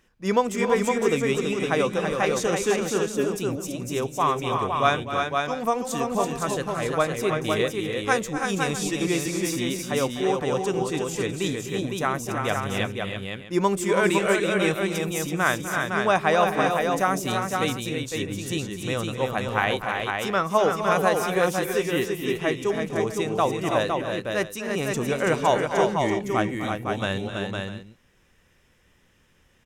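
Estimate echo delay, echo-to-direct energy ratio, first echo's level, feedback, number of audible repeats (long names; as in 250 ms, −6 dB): 251 ms, −1.0 dB, −12.0 dB, repeats not evenly spaced, 4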